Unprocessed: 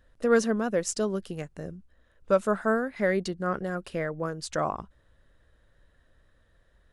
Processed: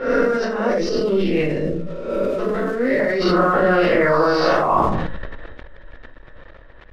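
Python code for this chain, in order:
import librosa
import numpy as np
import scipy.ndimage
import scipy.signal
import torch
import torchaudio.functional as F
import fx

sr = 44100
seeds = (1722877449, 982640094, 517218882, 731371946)

y = fx.spec_swells(x, sr, rise_s=0.87)
y = fx.over_compress(y, sr, threshold_db=-30.0, ratio=-1.0)
y = scipy.signal.sosfilt(scipy.signal.butter(16, 5700.0, 'lowpass', fs=sr, output='sos'), y)
y = fx.bass_treble(y, sr, bass_db=-8, treble_db=-10)
y = fx.room_shoebox(y, sr, seeds[0], volume_m3=260.0, walls='furnished', distance_m=4.4)
y = np.sign(y) * np.maximum(np.abs(y) - 10.0 ** (-52.0 / 20.0), 0.0)
y = fx.env_lowpass(y, sr, base_hz=3000.0, full_db=-18.5)
y = fx.band_shelf(y, sr, hz=1000.0, db=-11.0, octaves=1.7, at=(0.78, 3.0))
y = fx.sustainer(y, sr, db_per_s=25.0)
y = F.gain(torch.from_numpy(y), 4.5).numpy()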